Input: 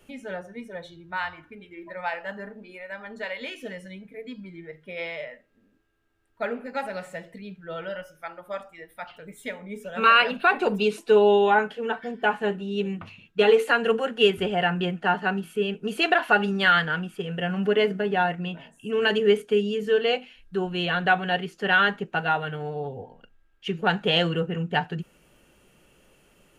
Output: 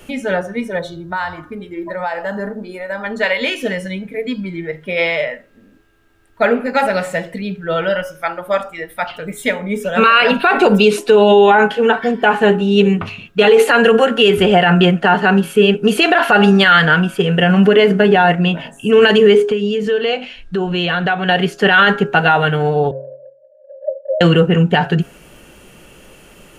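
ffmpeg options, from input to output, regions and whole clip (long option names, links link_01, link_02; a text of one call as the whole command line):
ffmpeg -i in.wav -filter_complex "[0:a]asettb=1/sr,asplit=3[link_01][link_02][link_03];[link_01]atrim=end=0.794[link_04];[link_02]atrim=start=0.79:end=3.04,asetpts=PTS-STARTPTS,afade=type=in:duration=0.004:curve=qsin,afade=type=out:start_time=2.246:duration=0.004:curve=qsin,equalizer=frequency=2500:width=1.6:gain=-11.5,acompressor=threshold=-34dB:ratio=4:attack=3.2:release=140:knee=1:detection=peak[link_05];[link_03]atrim=start=3.036[link_06];[link_04][link_05]acrossfade=duration=0.004:curve1=hsin:curve2=qsin[link_07];[link_07][link_06]acrossfade=duration=0.004:curve1=qsin:curve2=hsin,asettb=1/sr,asplit=3[link_08][link_09][link_10];[link_08]atrim=end=19.354[link_11];[link_09]atrim=start=19.35:end=21.29,asetpts=PTS-STARTPTS,afade=type=in:duration=0.004:curve=qsin,afade=type=out:start_time=1.936:duration=0.004:curve=qsin,lowpass=7400,acompressor=threshold=-33dB:ratio=3:attack=3.2:release=140:knee=1:detection=peak[link_12];[link_10]atrim=start=21.286[link_13];[link_11][link_12]acrossfade=duration=0.004:curve1=hsin:curve2=qsin[link_14];[link_14][link_13]acrossfade=duration=0.004:curve1=qsin:curve2=hsin,asettb=1/sr,asplit=3[link_15][link_16][link_17];[link_15]atrim=end=22.914[link_18];[link_16]atrim=start=22.91:end=24.21,asetpts=PTS-STARTPTS,afade=type=in:duration=0.004:curve=qsin,afade=type=out:start_time=1.296:duration=0.004:curve=qsin,asuperpass=centerf=570:order=20:qfactor=5.3,acompressor=mode=upward:threshold=-40dB:ratio=2.5:attack=3.2:release=140:knee=2.83:detection=peak[link_19];[link_17]atrim=start=24.206[link_20];[link_18][link_19]acrossfade=duration=0.004:curve1=hsin:curve2=qsin[link_21];[link_21][link_20]acrossfade=duration=0.004:curve1=qsin:curve2=hsin,bandreject=frequency=137.3:width_type=h:width=4,bandreject=frequency=274.6:width_type=h:width=4,bandreject=frequency=411.9:width_type=h:width=4,bandreject=frequency=549.2:width_type=h:width=4,bandreject=frequency=686.5:width_type=h:width=4,bandreject=frequency=823.8:width_type=h:width=4,bandreject=frequency=961.1:width_type=h:width=4,bandreject=frequency=1098.4:width_type=h:width=4,bandreject=frequency=1235.7:width_type=h:width=4,bandreject=frequency=1373:width_type=h:width=4,bandreject=frequency=1510.3:width_type=h:width=4,bandreject=frequency=1647.6:width_type=h:width=4,alimiter=level_in=17.5dB:limit=-1dB:release=50:level=0:latency=1,volume=-1dB" out.wav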